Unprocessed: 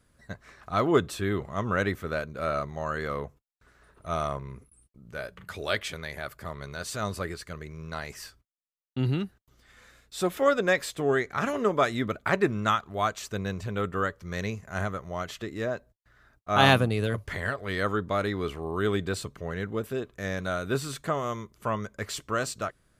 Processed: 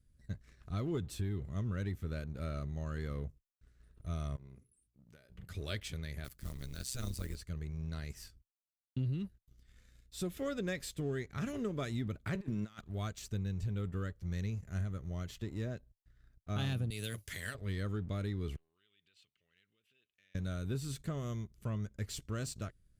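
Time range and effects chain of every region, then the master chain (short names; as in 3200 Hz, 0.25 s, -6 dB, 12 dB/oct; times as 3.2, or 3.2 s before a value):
4.36–5.3 HPF 250 Hz 6 dB/oct + notches 60/120/180/240/300/360/420 Hz + compressor 3:1, threshold -45 dBFS
6.24–7.37 block floating point 5-bit + high shelf 2600 Hz +8.5 dB + AM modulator 130 Hz, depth 75%
12.35–12.81 HPF 190 Hz + negative-ratio compressor -35 dBFS
16.9–17.55 tilt +4 dB/oct + notch 4300 Hz, Q 27
18.56–20.35 compressor 20:1, threshold -33 dBFS + band-pass 2800 Hz, Q 3.6
whole clip: passive tone stack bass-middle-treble 10-0-1; sample leveller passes 1; compressor 6:1, threshold -42 dBFS; gain +9.5 dB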